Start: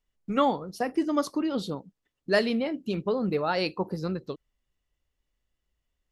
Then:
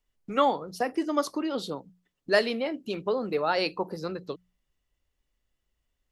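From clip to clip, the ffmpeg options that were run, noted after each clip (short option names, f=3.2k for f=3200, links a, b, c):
-filter_complex "[0:a]bandreject=f=60:t=h:w=6,bandreject=f=120:t=h:w=6,bandreject=f=180:t=h:w=6,acrossover=split=320|4100[a][b][c];[a]acompressor=threshold=-43dB:ratio=4[d];[d][b][c]amix=inputs=3:normalize=0,volume=1.5dB"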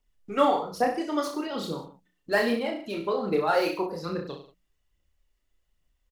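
-filter_complex "[0:a]acrossover=split=2200[a][b];[b]asoftclip=type=hard:threshold=-37dB[c];[a][c]amix=inputs=2:normalize=0,aphaser=in_gain=1:out_gain=1:delay=3.4:decay=0.5:speed=1.2:type=triangular,aecho=1:1:30|63|99.3|139.2|183.2:0.631|0.398|0.251|0.158|0.1,volume=-1.5dB"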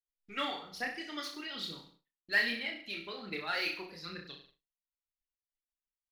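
-filter_complex "[0:a]equalizer=f=125:t=o:w=1:g=-7,equalizer=f=250:t=o:w=1:g=-4,equalizer=f=500:t=o:w=1:g=-11,equalizer=f=1k:t=o:w=1:g=-10,equalizer=f=2k:t=o:w=1:g=10,equalizer=f=4k:t=o:w=1:g=8,equalizer=f=8k:t=o:w=1:g=-5,asplit=2[a][b];[b]adelay=227.4,volume=-24dB,highshelf=f=4k:g=-5.12[c];[a][c]amix=inputs=2:normalize=0,agate=range=-33dB:threshold=-52dB:ratio=3:detection=peak,volume=-7dB"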